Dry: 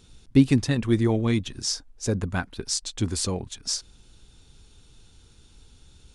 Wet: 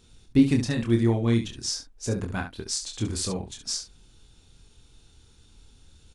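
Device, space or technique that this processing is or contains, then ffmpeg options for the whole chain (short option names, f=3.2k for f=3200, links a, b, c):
slapback doubling: -filter_complex "[0:a]asplit=3[a][b][c];[b]adelay=26,volume=-5dB[d];[c]adelay=69,volume=-9dB[e];[a][d][e]amix=inputs=3:normalize=0,volume=-3.5dB"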